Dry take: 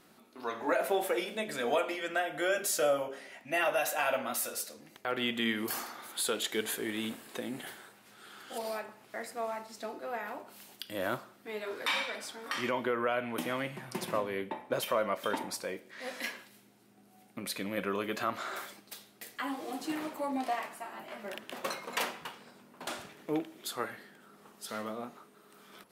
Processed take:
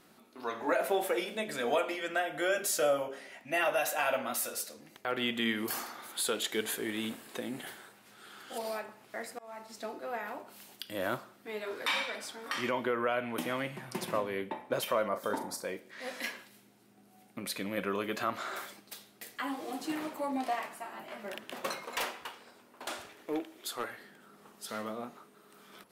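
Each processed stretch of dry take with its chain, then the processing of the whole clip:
0:09.30–0:09.70: volume swells 343 ms + hum removal 418.7 Hz, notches 29
0:15.08–0:15.65: parametric band 2,700 Hz −14.5 dB 0.86 octaves + double-tracking delay 39 ms −9.5 dB
0:21.84–0:24.01: parametric band 170 Hz −14 dB 0.71 octaves + hard clipping −27.5 dBFS
whole clip: no processing

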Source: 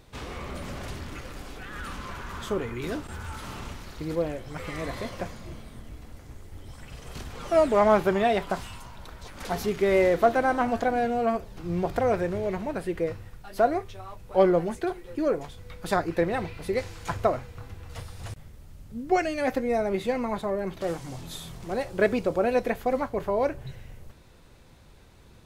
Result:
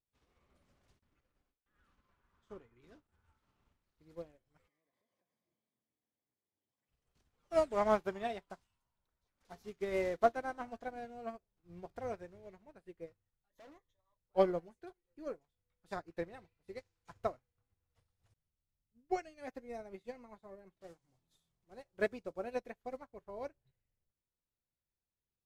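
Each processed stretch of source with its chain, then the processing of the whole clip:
0:00.99–0:03.84: noise gate with hold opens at −29 dBFS, closes at −37 dBFS + high-shelf EQ 7,000 Hz −10.5 dB
0:04.67–0:06.89: high-pass filter 150 Hz + notch comb filter 1,400 Hz + downward compressor 10 to 1, threshold −38 dBFS
0:13.50–0:14.17: EQ curve with evenly spaced ripples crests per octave 1.1, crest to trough 14 dB + hard clipping −27.5 dBFS
whole clip: dynamic equaliser 6,000 Hz, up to +4 dB, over −50 dBFS, Q 1.1; expander for the loud parts 2.5 to 1, over −40 dBFS; level −6.5 dB

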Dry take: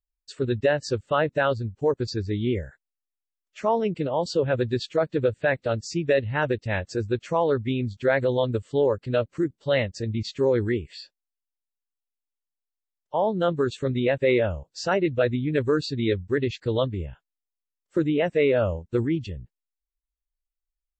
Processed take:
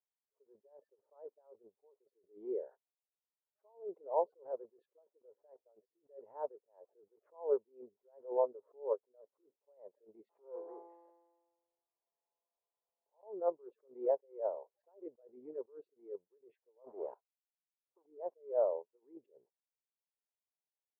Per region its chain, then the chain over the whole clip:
0:10.29–0:13.23: downward compressor 2 to 1, threshold −31 dBFS + power curve on the samples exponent 0.5 + tuned comb filter 170 Hz, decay 1.4 s, mix 90%
0:16.84–0:18.06: low-shelf EQ 350 Hz −3.5 dB + leveller curve on the samples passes 3
whole clip: downward compressor 2.5 to 1, threshold −27 dBFS; elliptic band-pass filter 410–980 Hz, stop band 80 dB; level that may rise only so fast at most 190 dB per second; level +1 dB

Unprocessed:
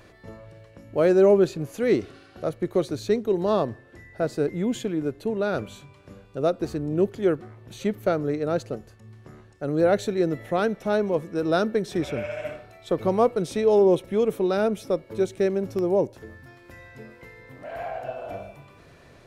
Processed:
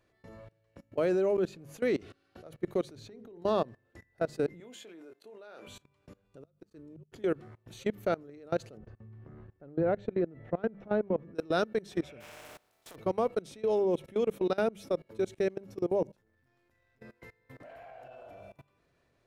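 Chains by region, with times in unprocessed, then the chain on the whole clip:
0:02.95–0:03.42: high-shelf EQ 5,800 Hz −11 dB + downward compressor, threshold −28 dBFS + mains-hum notches 60/120/180/240/300/360/420/480/540 Hz
0:04.60–0:05.67: high-pass filter 470 Hz + double-tracking delay 24 ms −10 dB
0:06.42–0:07.12: low-shelf EQ 150 Hz −6 dB + notch filter 740 Hz, Q 5.8 + gate with flip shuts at −20 dBFS, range −33 dB
0:08.77–0:11.35: low-pass filter 2,000 Hz + low-shelf EQ 390 Hz +7.5 dB + downward compressor 3 to 1, threshold −20 dBFS
0:12.20–0:12.94: compressing power law on the bin magnitudes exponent 0.34 + parametric band 670 Hz +6.5 dB 2 octaves + downward compressor 3 to 1, threshold −43 dBFS
0:16.15–0:17.02: gain on one half-wave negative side −7 dB + compressor whose output falls as the input rises −50 dBFS
whole clip: mains-hum notches 50/100/150/200 Hz; dynamic equaliser 2,700 Hz, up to +3 dB, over −45 dBFS, Q 1.3; output level in coarse steps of 23 dB; level −3.5 dB

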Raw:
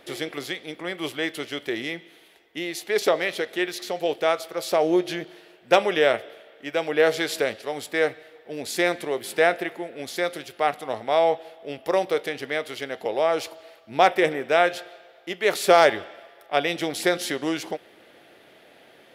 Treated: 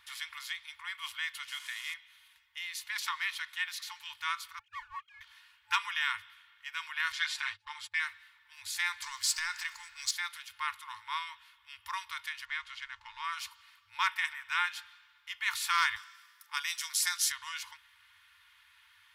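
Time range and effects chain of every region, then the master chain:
0:01.48–0:01.94: linear delta modulator 64 kbit/s, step −34 dBFS + high-pass filter 870 Hz
0:04.59–0:05.21: three sine waves on the formant tracks + power curve on the samples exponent 1.4
0:07.12–0:08.00: noise gate −38 dBFS, range −26 dB + high-frequency loss of the air 61 metres + comb filter 6.6 ms, depth 86%
0:09.02–0:10.11: downward compressor 2.5 to 1, threshold −25 dBFS + flat-topped bell 5,900 Hz +14.5 dB 1.1 octaves + leveller curve on the samples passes 1
0:12.45–0:13.24: slack as between gear wheels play −42.5 dBFS + high-frequency loss of the air 78 metres
0:15.96–0:17.32: high-pass filter 780 Hz + high shelf with overshoot 4,300 Hz +9 dB, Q 1.5
whole clip: brick-wall band-stop 100–870 Hz; dynamic equaliser 690 Hz, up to +4 dB, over −50 dBFS, Q 2.8; comb filter 2.8 ms, depth 42%; level −6.5 dB

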